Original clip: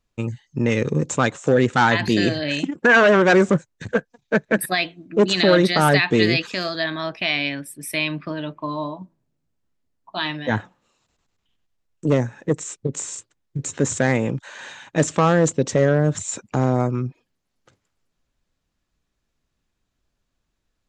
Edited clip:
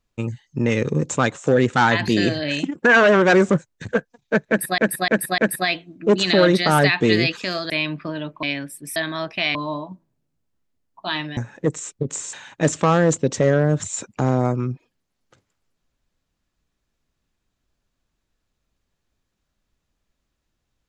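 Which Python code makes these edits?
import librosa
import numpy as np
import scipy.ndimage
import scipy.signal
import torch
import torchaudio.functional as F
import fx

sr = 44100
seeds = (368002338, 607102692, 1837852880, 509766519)

y = fx.edit(x, sr, fx.repeat(start_s=4.48, length_s=0.3, count=4),
    fx.swap(start_s=6.8, length_s=0.59, other_s=7.92, other_length_s=0.73),
    fx.cut(start_s=10.47, length_s=1.74),
    fx.cut(start_s=13.17, length_s=1.51), tone=tone)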